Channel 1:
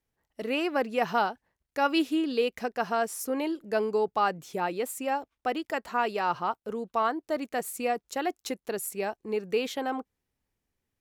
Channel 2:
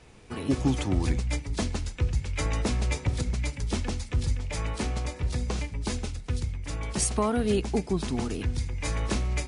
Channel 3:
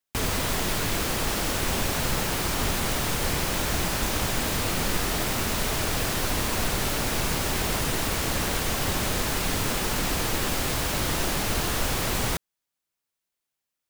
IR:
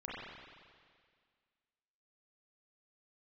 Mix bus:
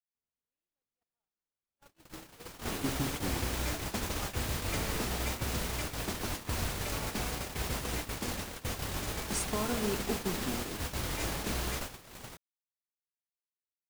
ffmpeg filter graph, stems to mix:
-filter_complex "[0:a]volume=-18dB,asplit=2[a][b];[b]volume=-17.5dB[c];[1:a]adelay=2350,volume=0.5dB,asplit=2[d][e];[e]volume=-16.5dB[f];[2:a]volume=-9dB,afade=t=in:st=1.62:d=0.73:silence=0.446684[g];[a][d]amix=inputs=2:normalize=0,acompressor=threshold=-37dB:ratio=3,volume=0dB[h];[3:a]atrim=start_sample=2205[i];[c][f]amix=inputs=2:normalize=0[j];[j][i]afir=irnorm=-1:irlink=0[k];[g][h][k]amix=inputs=3:normalize=0,agate=range=-58dB:threshold=-32dB:ratio=16:detection=peak,lowshelf=f=70:g=-6.5"

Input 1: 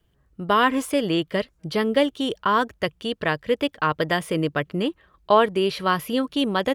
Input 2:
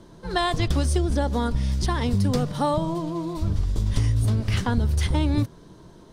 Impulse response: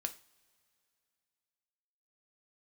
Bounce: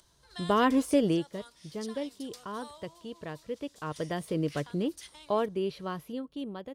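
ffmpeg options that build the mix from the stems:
-filter_complex "[0:a]highshelf=f=4.2k:g=-9,dynaudnorm=f=310:g=3:m=6.5dB,volume=2dB,afade=t=out:st=1.05:d=0.22:silence=0.223872,afade=t=in:st=3.6:d=0.77:silence=0.446684,afade=t=out:st=5.71:d=0.51:silence=0.421697,asplit=2[a][b];[b]volume=-23.5dB[c];[1:a]acompressor=mode=upward:threshold=-32dB:ratio=2.5,highpass=1.5k,volume=-9dB[d];[2:a]atrim=start_sample=2205[e];[c][e]afir=irnorm=-1:irlink=0[f];[a][d][f]amix=inputs=3:normalize=0,equalizer=f=1.7k:w=0.53:g=-9"

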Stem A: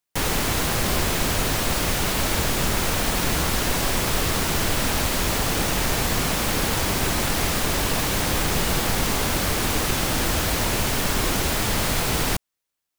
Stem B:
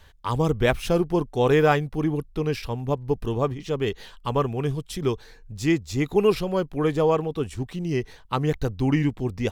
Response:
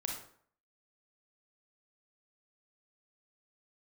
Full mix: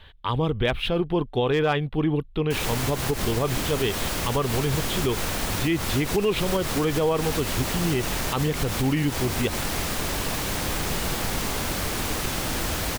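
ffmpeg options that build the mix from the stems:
-filter_complex "[0:a]adelay=2350,volume=-4.5dB[a];[1:a]highshelf=f=4.6k:t=q:w=3:g=-10.5,volume=2.5dB,asplit=2[b][c];[c]apad=whole_len=676194[d];[a][d]sidechaincompress=threshold=-19dB:ratio=8:attack=16:release=189[e];[e][b]amix=inputs=2:normalize=0,asoftclip=type=hard:threshold=-7dB,alimiter=limit=-14dB:level=0:latency=1:release=71"

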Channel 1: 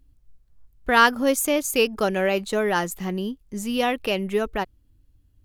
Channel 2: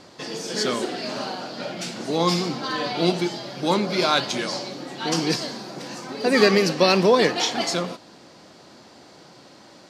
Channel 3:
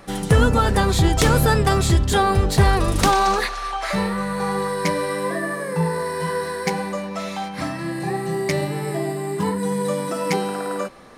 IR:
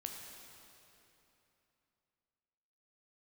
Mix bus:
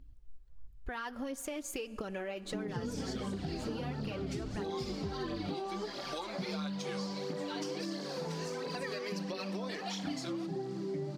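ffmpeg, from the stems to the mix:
-filter_complex "[0:a]equalizer=f=14k:w=0.68:g=-14,alimiter=limit=-15dB:level=0:latency=1:release=30,volume=-3dB,asplit=2[a][b];[b]volume=-21.5dB[c];[1:a]highpass=f=630:p=1,adelay=2500,volume=-2dB[d];[2:a]alimiter=limit=-11.5dB:level=0:latency=1,bandpass=f=260:t=q:w=1.9:csg=0,asplit=2[e][f];[f]adelay=6.4,afreqshift=-2.4[g];[e][g]amix=inputs=2:normalize=1,adelay=2450,volume=2.5dB[h];[a][d]amix=inputs=2:normalize=0,aphaser=in_gain=1:out_gain=1:delay=3.8:decay=0.52:speed=1.5:type=triangular,acompressor=threshold=-35dB:ratio=4,volume=0dB[i];[3:a]atrim=start_sample=2205[j];[c][j]afir=irnorm=-1:irlink=0[k];[h][i][k]amix=inputs=3:normalize=0,acompressor=threshold=-36dB:ratio=4"

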